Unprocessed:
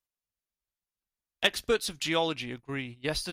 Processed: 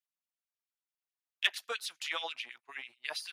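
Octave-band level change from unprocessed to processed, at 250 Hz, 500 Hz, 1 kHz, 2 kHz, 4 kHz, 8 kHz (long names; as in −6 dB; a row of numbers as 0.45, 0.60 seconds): −28.5, −16.5, −8.0, −3.5, −4.5, −7.5 decibels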